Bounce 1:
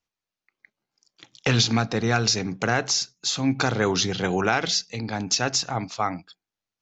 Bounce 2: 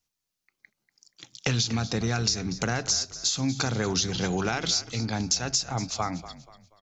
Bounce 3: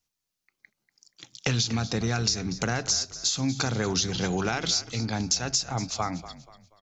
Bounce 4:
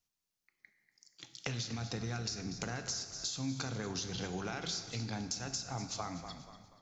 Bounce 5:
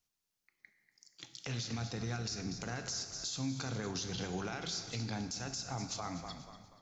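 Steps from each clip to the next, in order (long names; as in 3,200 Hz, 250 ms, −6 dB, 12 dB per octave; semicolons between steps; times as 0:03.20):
bass and treble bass +6 dB, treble +11 dB; downward compressor 4 to 1, threshold −22 dBFS, peak gain reduction 11 dB; echo with shifted repeats 240 ms, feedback 37%, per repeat −37 Hz, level −15 dB; level −2 dB
no processing that can be heard
downward compressor 4 to 1, threshold −32 dBFS, peak gain reduction 10.5 dB; dense smooth reverb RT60 1.7 s, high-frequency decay 0.8×, DRR 8 dB; level −5 dB
brickwall limiter −29.5 dBFS, peak gain reduction 7.5 dB; level +1 dB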